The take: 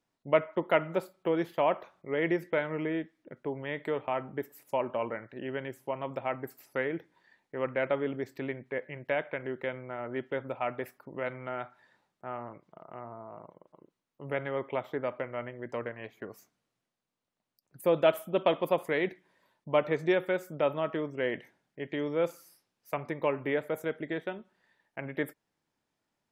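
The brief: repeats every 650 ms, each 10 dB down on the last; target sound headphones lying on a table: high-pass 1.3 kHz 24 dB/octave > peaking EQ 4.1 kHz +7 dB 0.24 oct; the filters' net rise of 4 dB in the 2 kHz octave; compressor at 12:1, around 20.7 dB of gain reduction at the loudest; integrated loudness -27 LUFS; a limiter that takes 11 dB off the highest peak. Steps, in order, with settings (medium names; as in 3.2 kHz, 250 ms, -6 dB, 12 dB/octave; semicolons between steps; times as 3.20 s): peaking EQ 2 kHz +5 dB; compression 12:1, threshold -39 dBFS; peak limiter -32.5 dBFS; high-pass 1.3 kHz 24 dB/octave; peaking EQ 4.1 kHz +7 dB 0.24 oct; feedback delay 650 ms, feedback 32%, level -10 dB; trim +25.5 dB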